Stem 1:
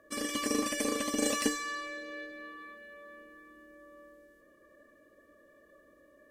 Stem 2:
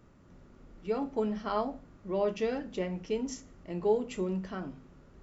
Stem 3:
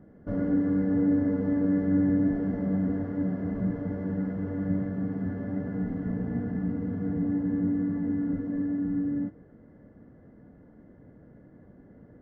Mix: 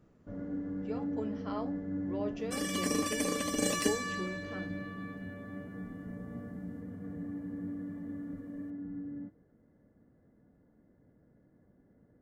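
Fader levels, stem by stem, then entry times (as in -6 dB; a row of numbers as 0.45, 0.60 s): -1.0, -8.5, -12.5 dB; 2.40, 0.00, 0.00 s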